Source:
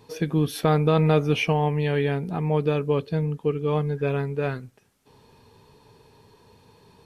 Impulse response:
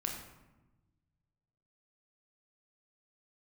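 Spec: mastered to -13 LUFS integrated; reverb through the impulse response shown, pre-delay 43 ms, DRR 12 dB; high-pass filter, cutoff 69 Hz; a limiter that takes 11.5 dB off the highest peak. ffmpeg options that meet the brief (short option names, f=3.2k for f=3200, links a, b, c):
-filter_complex "[0:a]highpass=69,alimiter=limit=-18.5dB:level=0:latency=1,asplit=2[a][b];[1:a]atrim=start_sample=2205,adelay=43[c];[b][c]afir=irnorm=-1:irlink=0,volume=-14dB[d];[a][d]amix=inputs=2:normalize=0,volume=16dB"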